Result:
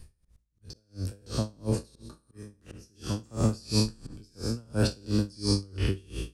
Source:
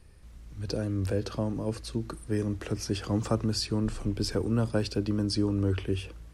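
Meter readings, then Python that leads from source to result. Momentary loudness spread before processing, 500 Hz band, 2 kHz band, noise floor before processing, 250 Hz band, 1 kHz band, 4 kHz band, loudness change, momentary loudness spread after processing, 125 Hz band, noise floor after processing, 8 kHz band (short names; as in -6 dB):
7 LU, -4.0 dB, -1.5 dB, -49 dBFS, -2.5 dB, -3.0 dB, +1.0 dB, 0.0 dB, 22 LU, -0.5 dB, -70 dBFS, +1.5 dB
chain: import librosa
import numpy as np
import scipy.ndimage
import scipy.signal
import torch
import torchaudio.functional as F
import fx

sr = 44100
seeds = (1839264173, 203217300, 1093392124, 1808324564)

y = fx.spec_trails(x, sr, decay_s=1.26)
y = fx.bass_treble(y, sr, bass_db=7, treble_db=9)
y = fx.auto_swell(y, sr, attack_ms=775.0)
y = fx.echo_filtered(y, sr, ms=73, feedback_pct=42, hz=1800.0, wet_db=-17.5)
y = y * 10.0 ** (-31 * (0.5 - 0.5 * np.cos(2.0 * np.pi * 2.9 * np.arange(len(y)) / sr)) / 20.0)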